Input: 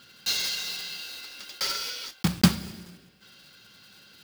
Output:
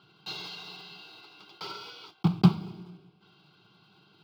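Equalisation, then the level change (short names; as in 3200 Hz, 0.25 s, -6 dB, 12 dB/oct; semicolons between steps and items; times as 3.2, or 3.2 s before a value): HPF 90 Hz; air absorption 400 m; fixed phaser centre 360 Hz, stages 8; +3.5 dB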